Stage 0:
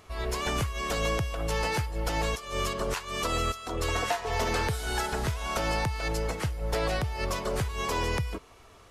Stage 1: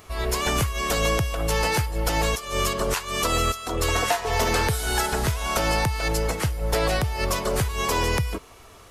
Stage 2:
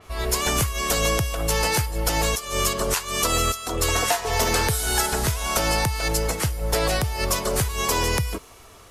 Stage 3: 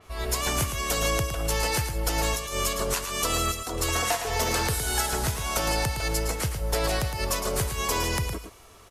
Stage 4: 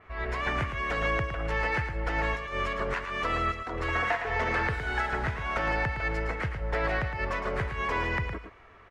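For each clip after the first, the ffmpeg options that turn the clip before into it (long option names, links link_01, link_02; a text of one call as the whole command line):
ffmpeg -i in.wav -af "highshelf=frequency=9400:gain=10,volume=5.5dB" out.wav
ffmpeg -i in.wav -af "adynamicequalizer=threshold=0.00794:dfrequency=4400:dqfactor=0.7:tfrequency=4400:tqfactor=0.7:attack=5:release=100:ratio=0.375:range=3:mode=boostabove:tftype=highshelf" out.wav
ffmpeg -i in.wav -af "aecho=1:1:112:0.398,volume=-4.5dB" out.wav
ffmpeg -i in.wav -af "lowpass=frequency=1900:width_type=q:width=2.7,volume=-3.5dB" out.wav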